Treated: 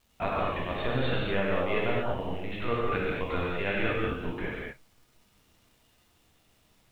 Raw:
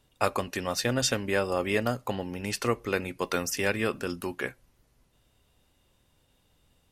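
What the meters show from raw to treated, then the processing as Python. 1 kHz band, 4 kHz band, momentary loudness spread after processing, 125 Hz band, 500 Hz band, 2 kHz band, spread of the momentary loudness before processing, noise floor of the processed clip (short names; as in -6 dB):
0.0 dB, -5.0 dB, 7 LU, +1.0 dB, -0.5 dB, -1.0 dB, 8 LU, -66 dBFS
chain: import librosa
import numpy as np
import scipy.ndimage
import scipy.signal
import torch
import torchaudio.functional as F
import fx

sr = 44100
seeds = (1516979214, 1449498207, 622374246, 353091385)

y = fx.lpc_vocoder(x, sr, seeds[0], excitation='pitch_kept', order=10)
y = fx.dmg_crackle(y, sr, seeds[1], per_s=360.0, level_db=-51.0)
y = fx.rev_gated(y, sr, seeds[2], gate_ms=270, shape='flat', drr_db=-5.0)
y = y * 10.0 ** (-6.0 / 20.0)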